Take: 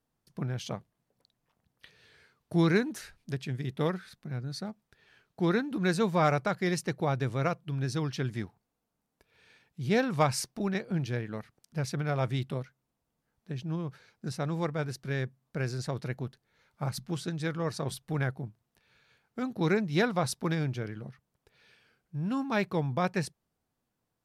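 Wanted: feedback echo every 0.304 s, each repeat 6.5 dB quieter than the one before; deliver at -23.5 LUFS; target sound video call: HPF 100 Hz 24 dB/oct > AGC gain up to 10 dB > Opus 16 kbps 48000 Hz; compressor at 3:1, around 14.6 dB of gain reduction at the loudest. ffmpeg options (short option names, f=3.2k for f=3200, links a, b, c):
-af "acompressor=threshold=-41dB:ratio=3,highpass=f=100:w=0.5412,highpass=f=100:w=1.3066,aecho=1:1:304|608|912|1216|1520|1824:0.473|0.222|0.105|0.0491|0.0231|0.0109,dynaudnorm=m=10dB,volume=12dB" -ar 48000 -c:a libopus -b:a 16k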